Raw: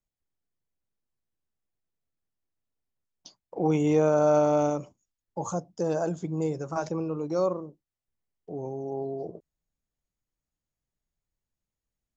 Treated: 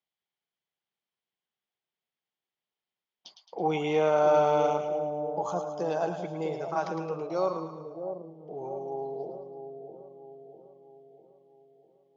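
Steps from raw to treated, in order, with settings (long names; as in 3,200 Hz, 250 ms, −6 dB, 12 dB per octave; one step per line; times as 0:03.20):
loudspeaker in its box 240–5,100 Hz, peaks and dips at 280 Hz −10 dB, 530 Hz −3 dB, 820 Hz +4 dB, 2,100 Hz +4 dB, 3,200 Hz +9 dB
echo with a time of its own for lows and highs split 740 Hz, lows 650 ms, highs 109 ms, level −7 dB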